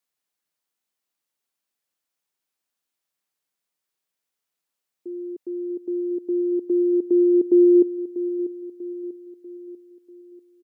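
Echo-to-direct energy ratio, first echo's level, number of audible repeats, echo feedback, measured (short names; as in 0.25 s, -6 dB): -12.0 dB, -13.0 dB, 4, 47%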